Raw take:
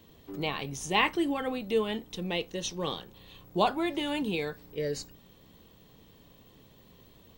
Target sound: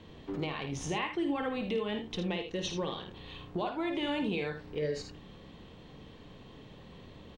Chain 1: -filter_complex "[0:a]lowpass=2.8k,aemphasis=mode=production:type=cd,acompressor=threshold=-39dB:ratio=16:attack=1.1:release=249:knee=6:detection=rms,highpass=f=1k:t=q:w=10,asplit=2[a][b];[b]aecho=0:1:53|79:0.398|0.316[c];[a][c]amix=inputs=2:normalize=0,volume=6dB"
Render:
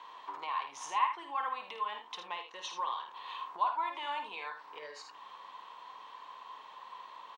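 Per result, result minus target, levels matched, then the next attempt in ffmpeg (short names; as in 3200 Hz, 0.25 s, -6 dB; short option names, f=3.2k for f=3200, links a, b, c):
1000 Hz band +10.0 dB; compressor: peak gain reduction +5.5 dB
-filter_complex "[0:a]lowpass=2.8k,aemphasis=mode=production:type=cd,acompressor=threshold=-39dB:ratio=16:attack=1.1:release=249:knee=6:detection=rms,asplit=2[a][b];[b]aecho=0:1:53|79:0.398|0.316[c];[a][c]amix=inputs=2:normalize=0,volume=6dB"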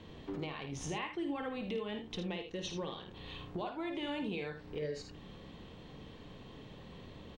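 compressor: peak gain reduction +5.5 dB
-filter_complex "[0:a]lowpass=2.8k,aemphasis=mode=production:type=cd,acompressor=threshold=-33dB:ratio=16:attack=1.1:release=249:knee=6:detection=rms,asplit=2[a][b];[b]aecho=0:1:53|79:0.398|0.316[c];[a][c]amix=inputs=2:normalize=0,volume=6dB"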